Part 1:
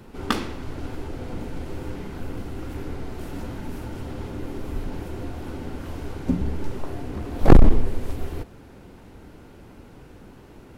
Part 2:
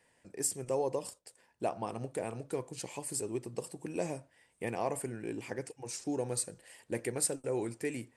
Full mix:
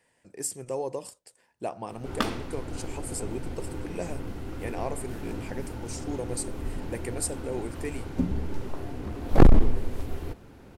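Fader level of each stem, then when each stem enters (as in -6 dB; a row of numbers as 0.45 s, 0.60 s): -3.5 dB, +0.5 dB; 1.90 s, 0.00 s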